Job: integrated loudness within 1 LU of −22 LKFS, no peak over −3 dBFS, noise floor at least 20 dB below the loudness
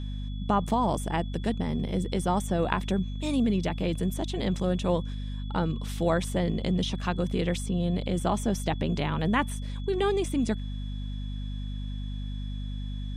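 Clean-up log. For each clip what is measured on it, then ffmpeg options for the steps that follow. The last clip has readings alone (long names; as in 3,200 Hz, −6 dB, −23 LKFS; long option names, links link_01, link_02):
mains hum 50 Hz; hum harmonics up to 250 Hz; level of the hum −31 dBFS; interfering tone 3,400 Hz; level of the tone −50 dBFS; integrated loudness −29.5 LKFS; sample peak −6.5 dBFS; target loudness −22.0 LKFS
→ -af "bandreject=frequency=50:width_type=h:width=6,bandreject=frequency=100:width_type=h:width=6,bandreject=frequency=150:width_type=h:width=6,bandreject=frequency=200:width_type=h:width=6,bandreject=frequency=250:width_type=h:width=6"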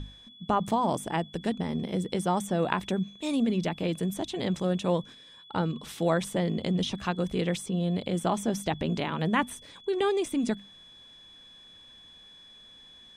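mains hum none found; interfering tone 3,400 Hz; level of the tone −50 dBFS
→ -af "bandreject=frequency=3400:width=30"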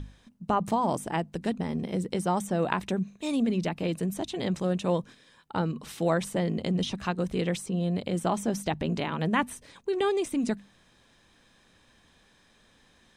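interfering tone none found; integrated loudness −29.5 LKFS; sample peak −7.0 dBFS; target loudness −22.0 LKFS
→ -af "volume=7.5dB,alimiter=limit=-3dB:level=0:latency=1"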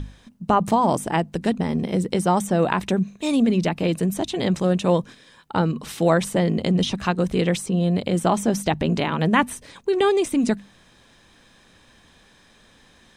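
integrated loudness −22.0 LKFS; sample peak −3.0 dBFS; background noise floor −55 dBFS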